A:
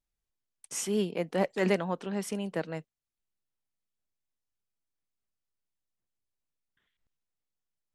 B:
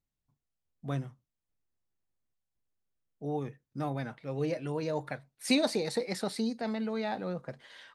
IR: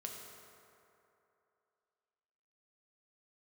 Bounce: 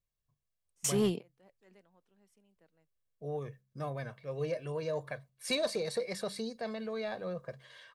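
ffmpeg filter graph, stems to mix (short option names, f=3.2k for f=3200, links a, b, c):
-filter_complex "[0:a]highshelf=f=5.7k:g=4.5,adelay=50,volume=2dB[a];[1:a]aecho=1:1:1.8:0.65,bandreject=f=66:t=h:w=4,bandreject=f=132:t=h:w=4,bandreject=f=198:t=h:w=4,volume=-4dB,asplit=2[b][c];[c]apad=whole_len=352715[d];[a][d]sidechaingate=range=-38dB:threshold=-53dB:ratio=16:detection=peak[e];[e][b]amix=inputs=2:normalize=0,asoftclip=type=tanh:threshold=-21dB"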